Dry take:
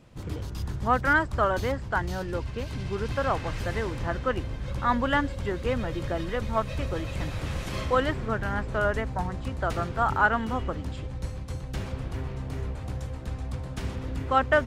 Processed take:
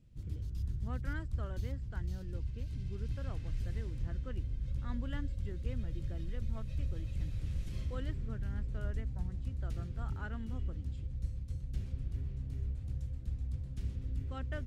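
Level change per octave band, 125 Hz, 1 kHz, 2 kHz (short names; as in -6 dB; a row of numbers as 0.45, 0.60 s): -5.5, -27.5, -23.5 dB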